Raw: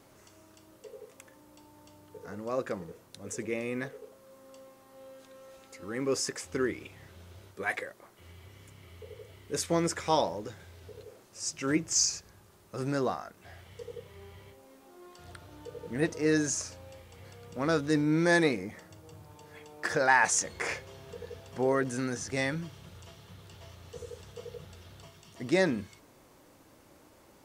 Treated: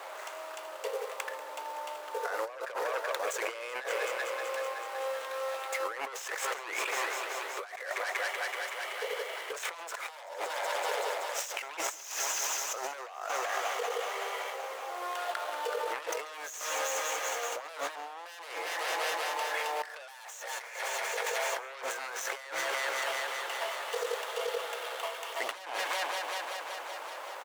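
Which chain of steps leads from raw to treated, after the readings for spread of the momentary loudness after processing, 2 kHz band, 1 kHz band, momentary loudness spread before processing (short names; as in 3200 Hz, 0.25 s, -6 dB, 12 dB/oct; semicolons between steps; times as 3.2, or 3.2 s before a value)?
8 LU, +0.5 dB, +2.5 dB, 23 LU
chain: median filter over 9 samples; in parallel at -8 dB: sine folder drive 18 dB, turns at -10.5 dBFS; on the sum: inverse Chebyshev high-pass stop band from 230 Hz, stop band 50 dB; on a send: multi-head echo 0.189 s, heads first and second, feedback 67%, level -17 dB; on the sum: negative-ratio compressor -37 dBFS, ratio -1; outdoor echo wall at 24 m, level -21 dB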